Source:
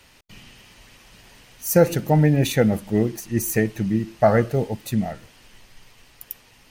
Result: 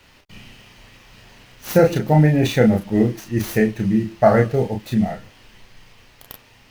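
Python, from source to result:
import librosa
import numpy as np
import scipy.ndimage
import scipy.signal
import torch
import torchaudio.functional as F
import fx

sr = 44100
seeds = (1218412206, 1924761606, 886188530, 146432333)

y = scipy.signal.medfilt(x, 5)
y = fx.room_early_taps(y, sr, ms=(32, 42), db=(-4.0, -11.5))
y = y * librosa.db_to_amplitude(1.5)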